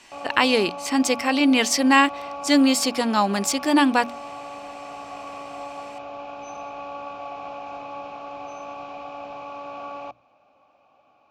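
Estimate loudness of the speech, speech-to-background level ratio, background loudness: -20.0 LUFS, 16.0 dB, -36.0 LUFS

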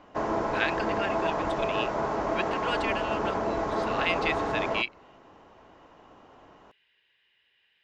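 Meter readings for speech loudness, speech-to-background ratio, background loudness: -33.5 LUFS, -4.5 dB, -29.0 LUFS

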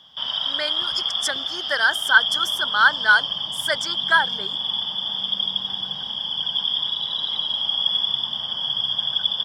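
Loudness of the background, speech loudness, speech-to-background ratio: -22.5 LUFS, -21.0 LUFS, 1.5 dB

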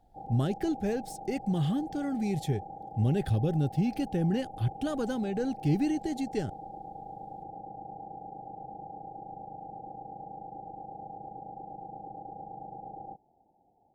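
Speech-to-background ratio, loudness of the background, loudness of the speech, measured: 13.0 dB, -44.0 LUFS, -31.0 LUFS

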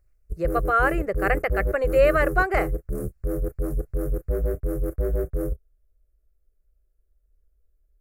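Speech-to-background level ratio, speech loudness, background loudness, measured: 5.5 dB, -23.5 LUFS, -29.0 LUFS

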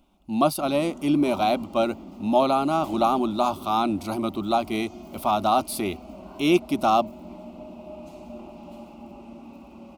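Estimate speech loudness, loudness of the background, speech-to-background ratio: -24.0 LUFS, -42.0 LUFS, 18.0 dB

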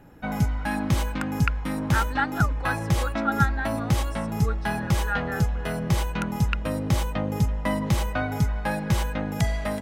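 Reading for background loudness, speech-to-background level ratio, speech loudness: -26.5 LUFS, -5.0 dB, -31.5 LUFS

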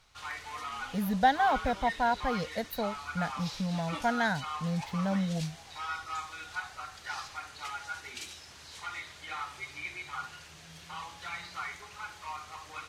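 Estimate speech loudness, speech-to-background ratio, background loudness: -31.5 LUFS, 8.5 dB, -40.0 LUFS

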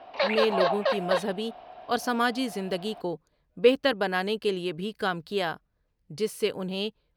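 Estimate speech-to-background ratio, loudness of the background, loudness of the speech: -1.5 dB, -27.0 LUFS, -28.5 LUFS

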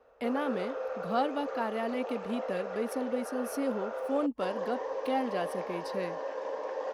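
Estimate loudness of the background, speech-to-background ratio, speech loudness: -37.5 LUFS, 3.0 dB, -34.5 LUFS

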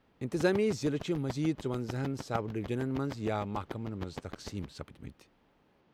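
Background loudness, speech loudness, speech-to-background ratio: -46.5 LUFS, -34.0 LUFS, 12.5 dB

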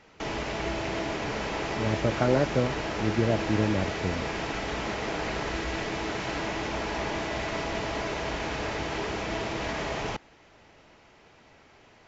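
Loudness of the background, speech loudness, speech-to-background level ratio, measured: -31.5 LUFS, -28.5 LUFS, 3.0 dB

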